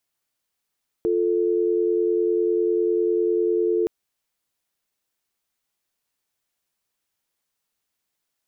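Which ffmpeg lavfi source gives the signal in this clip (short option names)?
-f lavfi -i "aevalsrc='0.0891*(sin(2*PI*350*t)+sin(2*PI*440*t))':d=2.82:s=44100"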